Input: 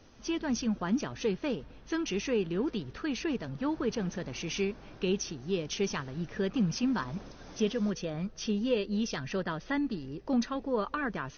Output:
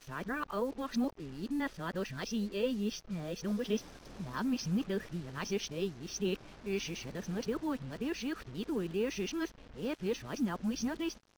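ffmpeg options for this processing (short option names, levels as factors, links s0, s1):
-af "areverse,acrusher=bits=7:mix=0:aa=0.5,volume=0.631"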